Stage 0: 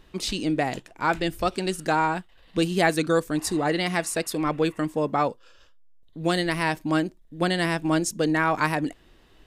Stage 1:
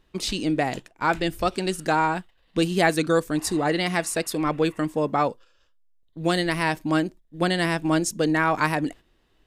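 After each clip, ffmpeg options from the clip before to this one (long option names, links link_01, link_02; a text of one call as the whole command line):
ffmpeg -i in.wav -af "agate=range=-10dB:threshold=-41dB:ratio=16:detection=peak,volume=1dB" out.wav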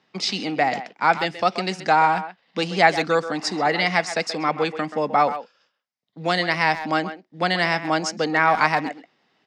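ffmpeg -i in.wav -filter_complex "[0:a]acrossover=split=290[link_01][link_02];[link_01]asoftclip=type=tanh:threshold=-30.5dB[link_03];[link_03][link_02]amix=inputs=2:normalize=0,highpass=frequency=150:width=0.5412,highpass=frequency=150:width=1.3066,equalizer=frequency=200:width_type=q:width=4:gain=3,equalizer=frequency=340:width_type=q:width=4:gain=-6,equalizer=frequency=780:width_type=q:width=4:gain=7,equalizer=frequency=1300:width_type=q:width=4:gain=3,equalizer=frequency=2100:width_type=q:width=4:gain=7,equalizer=frequency=5100:width_type=q:width=4:gain=8,lowpass=frequency=6400:width=0.5412,lowpass=frequency=6400:width=1.3066,asplit=2[link_04][link_05];[link_05]adelay=130,highpass=300,lowpass=3400,asoftclip=type=hard:threshold=-11dB,volume=-11dB[link_06];[link_04][link_06]amix=inputs=2:normalize=0,volume=1dB" out.wav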